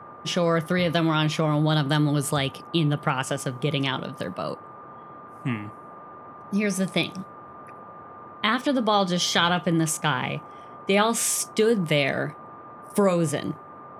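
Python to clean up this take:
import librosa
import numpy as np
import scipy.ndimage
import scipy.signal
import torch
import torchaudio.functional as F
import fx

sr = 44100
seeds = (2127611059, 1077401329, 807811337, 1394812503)

y = fx.notch(x, sr, hz=1200.0, q=30.0)
y = fx.noise_reduce(y, sr, print_start_s=4.93, print_end_s=5.43, reduce_db=27.0)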